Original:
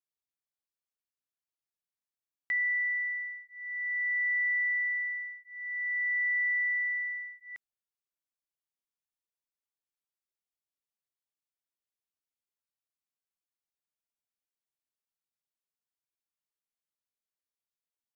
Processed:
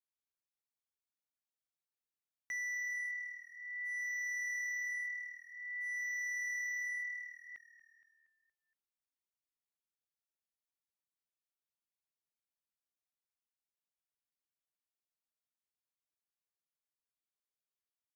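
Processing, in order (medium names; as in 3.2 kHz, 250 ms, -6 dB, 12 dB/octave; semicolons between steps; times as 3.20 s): overload inside the chain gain 31 dB; frequency-shifting echo 234 ms, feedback 57%, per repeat -38 Hz, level -17 dB; trim -6.5 dB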